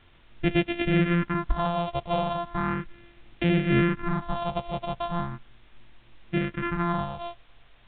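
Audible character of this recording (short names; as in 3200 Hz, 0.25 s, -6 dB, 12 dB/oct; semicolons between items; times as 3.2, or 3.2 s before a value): a buzz of ramps at a fixed pitch in blocks of 128 samples; phasing stages 4, 0.37 Hz, lowest notch 290–1100 Hz; a quantiser's noise floor 10-bit, dither triangular; A-law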